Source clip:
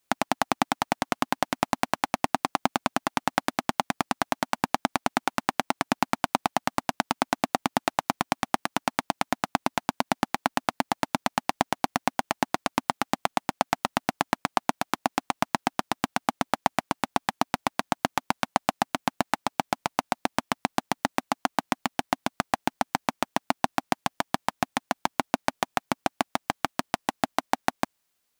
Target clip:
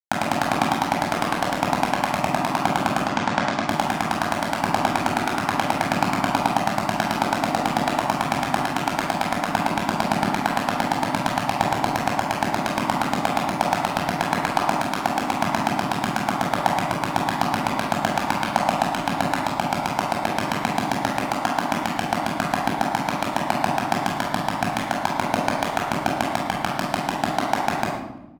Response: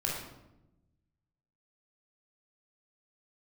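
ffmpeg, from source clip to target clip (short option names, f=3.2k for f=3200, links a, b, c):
-filter_complex "[0:a]asplit=2[a][b];[b]adelay=344,volume=-27dB,highshelf=f=4k:g=-7.74[c];[a][c]amix=inputs=2:normalize=0,aeval=exprs='sgn(val(0))*max(abs(val(0))-0.0141,0)':c=same,asplit=3[d][e][f];[d]afade=t=out:st=2.97:d=0.02[g];[e]lowpass=f=7.3k:w=0.5412,lowpass=f=7.3k:w=1.3066,afade=t=in:st=2.97:d=0.02,afade=t=out:st=3.59:d=0.02[h];[f]afade=t=in:st=3.59:d=0.02[i];[g][h][i]amix=inputs=3:normalize=0[j];[1:a]atrim=start_sample=2205[k];[j][k]afir=irnorm=-1:irlink=0"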